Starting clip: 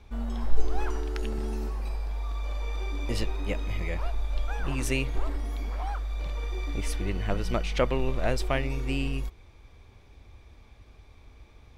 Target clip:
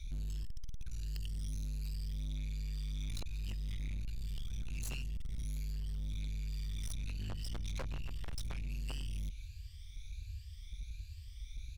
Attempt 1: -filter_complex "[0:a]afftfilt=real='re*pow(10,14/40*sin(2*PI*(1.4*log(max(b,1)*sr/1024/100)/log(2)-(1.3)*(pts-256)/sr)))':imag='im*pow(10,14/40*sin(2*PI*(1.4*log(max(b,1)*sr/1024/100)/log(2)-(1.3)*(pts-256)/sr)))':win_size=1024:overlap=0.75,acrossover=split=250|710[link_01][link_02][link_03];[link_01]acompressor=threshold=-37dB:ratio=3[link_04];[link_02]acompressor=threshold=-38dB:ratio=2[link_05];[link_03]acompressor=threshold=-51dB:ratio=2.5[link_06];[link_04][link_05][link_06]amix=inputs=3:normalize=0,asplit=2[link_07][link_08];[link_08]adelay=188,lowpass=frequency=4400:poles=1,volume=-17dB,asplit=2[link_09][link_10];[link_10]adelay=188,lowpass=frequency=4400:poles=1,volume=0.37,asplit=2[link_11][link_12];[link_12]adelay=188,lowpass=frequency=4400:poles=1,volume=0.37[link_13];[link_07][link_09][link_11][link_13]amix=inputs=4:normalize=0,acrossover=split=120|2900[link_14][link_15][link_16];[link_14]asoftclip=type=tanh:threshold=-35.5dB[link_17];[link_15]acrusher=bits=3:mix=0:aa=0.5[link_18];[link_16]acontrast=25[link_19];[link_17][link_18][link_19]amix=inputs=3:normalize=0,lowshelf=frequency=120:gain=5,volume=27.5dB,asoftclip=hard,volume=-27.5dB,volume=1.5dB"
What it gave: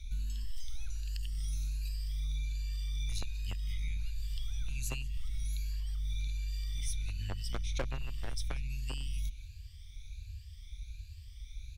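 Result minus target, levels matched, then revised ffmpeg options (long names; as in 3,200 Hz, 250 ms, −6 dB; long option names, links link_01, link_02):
gain into a clipping stage and back: distortion −13 dB
-filter_complex "[0:a]afftfilt=real='re*pow(10,14/40*sin(2*PI*(1.4*log(max(b,1)*sr/1024/100)/log(2)-(1.3)*(pts-256)/sr)))':imag='im*pow(10,14/40*sin(2*PI*(1.4*log(max(b,1)*sr/1024/100)/log(2)-(1.3)*(pts-256)/sr)))':win_size=1024:overlap=0.75,acrossover=split=250|710[link_01][link_02][link_03];[link_01]acompressor=threshold=-37dB:ratio=3[link_04];[link_02]acompressor=threshold=-38dB:ratio=2[link_05];[link_03]acompressor=threshold=-51dB:ratio=2.5[link_06];[link_04][link_05][link_06]amix=inputs=3:normalize=0,asplit=2[link_07][link_08];[link_08]adelay=188,lowpass=frequency=4400:poles=1,volume=-17dB,asplit=2[link_09][link_10];[link_10]adelay=188,lowpass=frequency=4400:poles=1,volume=0.37,asplit=2[link_11][link_12];[link_12]adelay=188,lowpass=frequency=4400:poles=1,volume=0.37[link_13];[link_07][link_09][link_11][link_13]amix=inputs=4:normalize=0,acrossover=split=120|2900[link_14][link_15][link_16];[link_14]asoftclip=type=tanh:threshold=-35.5dB[link_17];[link_15]acrusher=bits=3:mix=0:aa=0.5[link_18];[link_16]acontrast=25[link_19];[link_17][link_18][link_19]amix=inputs=3:normalize=0,lowshelf=frequency=120:gain=5,volume=38dB,asoftclip=hard,volume=-38dB,volume=1.5dB"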